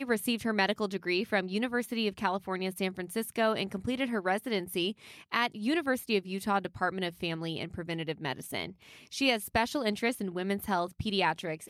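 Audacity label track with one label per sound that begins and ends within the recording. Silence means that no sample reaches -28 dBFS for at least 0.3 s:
5.330000	8.650000	sound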